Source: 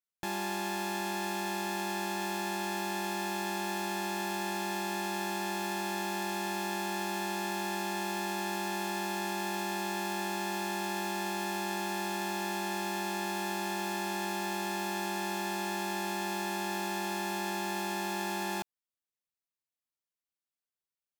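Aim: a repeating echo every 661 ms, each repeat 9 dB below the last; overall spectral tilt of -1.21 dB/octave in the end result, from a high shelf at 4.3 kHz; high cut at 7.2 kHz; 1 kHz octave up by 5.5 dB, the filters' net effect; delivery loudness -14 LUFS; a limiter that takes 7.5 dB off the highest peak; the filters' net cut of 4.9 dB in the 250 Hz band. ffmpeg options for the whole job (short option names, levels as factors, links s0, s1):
-af "lowpass=7200,equalizer=f=250:t=o:g=-9,equalizer=f=1000:t=o:g=7,highshelf=f=4300:g=8,alimiter=level_in=1.06:limit=0.0631:level=0:latency=1,volume=0.944,aecho=1:1:661|1322|1983|2644:0.355|0.124|0.0435|0.0152,volume=9.44"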